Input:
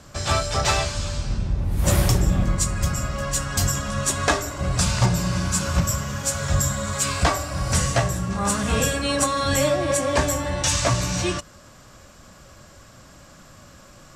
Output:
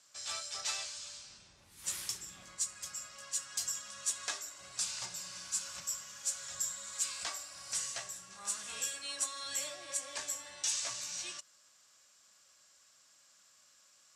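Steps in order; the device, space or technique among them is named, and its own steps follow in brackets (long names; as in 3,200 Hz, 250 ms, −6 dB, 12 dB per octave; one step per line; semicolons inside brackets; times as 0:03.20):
piezo pickup straight into a mixer (low-pass filter 7,700 Hz 12 dB per octave; first difference)
0:01.69–0:02.37: parametric band 640 Hz −11.5 dB 0.5 octaves
level −7 dB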